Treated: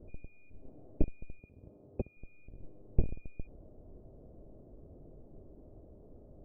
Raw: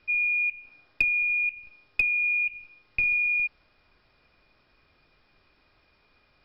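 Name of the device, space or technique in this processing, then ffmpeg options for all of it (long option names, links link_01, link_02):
under water: -filter_complex "[0:a]asettb=1/sr,asplit=3[link_01][link_02][link_03];[link_01]atrim=end=1.394[link_04];[link_02]atrim=start=1.39:end=2.17,asetpts=PTS-STARTPTS,afade=type=in:duration=0.004:curve=qsin,afade=type=out:start_time=0.776:duration=0.004:curve=qsin,highpass=72[link_05];[link_03]atrim=start=2.166[link_06];[link_04][link_05]acrossfade=duration=0.004:curve1=hsin:curve2=qsin[link_07];[link_07][link_06]acrossfade=duration=0.004:curve1=qsin:curve2=hsin,lowpass=frequency=470:width=0.5412,lowpass=frequency=470:width=1.3066,equalizer=frequency=650:width_type=o:width=0.48:gain=7,volume=15.5dB"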